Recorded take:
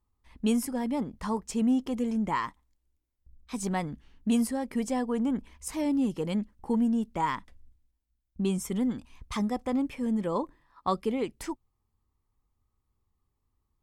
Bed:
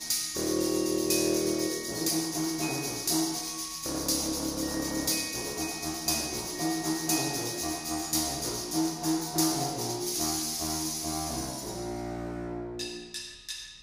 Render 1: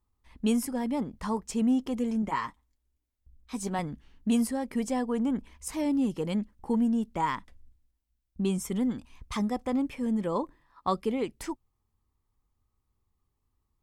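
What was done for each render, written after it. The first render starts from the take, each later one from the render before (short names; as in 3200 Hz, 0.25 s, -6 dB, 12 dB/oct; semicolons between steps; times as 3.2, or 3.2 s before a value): 2.22–3.79 notch comb 170 Hz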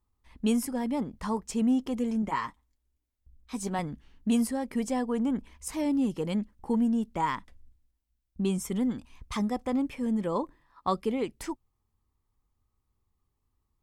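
nothing audible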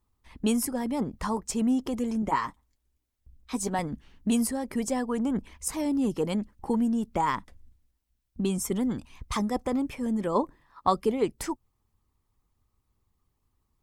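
dynamic EQ 2700 Hz, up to -5 dB, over -51 dBFS, Q 0.86; harmonic-percussive split percussive +7 dB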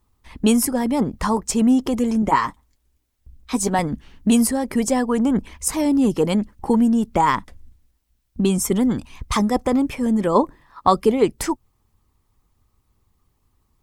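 gain +9 dB; limiter -3 dBFS, peak gain reduction 1.5 dB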